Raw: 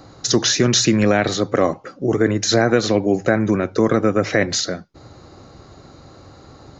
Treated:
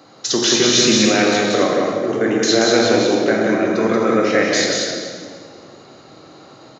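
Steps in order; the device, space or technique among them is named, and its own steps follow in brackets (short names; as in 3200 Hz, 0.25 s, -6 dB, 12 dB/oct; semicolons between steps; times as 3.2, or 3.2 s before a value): stadium PA (HPF 230 Hz 12 dB/oct; bell 2900 Hz +5.5 dB 0.8 oct; loudspeakers at several distances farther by 62 m -3 dB, 90 m -11 dB; reverb RT60 1.9 s, pre-delay 12 ms, DRR 0 dB); gain -2.5 dB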